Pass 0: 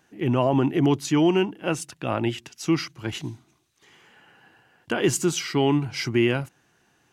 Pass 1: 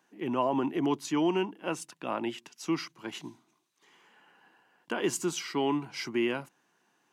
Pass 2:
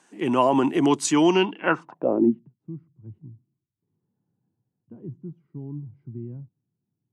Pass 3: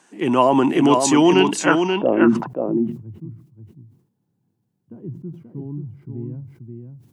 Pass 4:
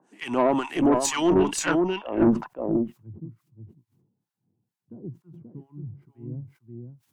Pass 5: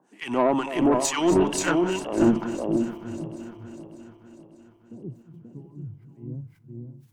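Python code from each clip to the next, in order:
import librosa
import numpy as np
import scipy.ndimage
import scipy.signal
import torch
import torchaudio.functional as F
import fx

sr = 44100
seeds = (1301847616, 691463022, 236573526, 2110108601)

y1 = scipy.signal.sosfilt(scipy.signal.butter(4, 180.0, 'highpass', fs=sr, output='sos'), x)
y1 = fx.peak_eq(y1, sr, hz=1000.0, db=7.0, octaves=0.37)
y1 = y1 * librosa.db_to_amplitude(-7.5)
y2 = fx.filter_sweep_lowpass(y1, sr, from_hz=8400.0, to_hz=100.0, start_s=1.21, end_s=2.58, q=4.3)
y2 = y2 * librosa.db_to_amplitude(8.5)
y3 = y2 + 10.0 ** (-5.5 / 20.0) * np.pad(y2, (int(532 * sr / 1000.0), 0))[:len(y2)]
y3 = fx.sustainer(y3, sr, db_per_s=110.0)
y3 = y3 * librosa.db_to_amplitude(4.0)
y4 = fx.harmonic_tremolo(y3, sr, hz=2.2, depth_pct=100, crossover_hz=940.0)
y4 = fx.tube_stage(y4, sr, drive_db=12.0, bias=0.45)
y5 = fx.reverse_delay_fb(y4, sr, ms=298, feedback_pct=68, wet_db=-13.0)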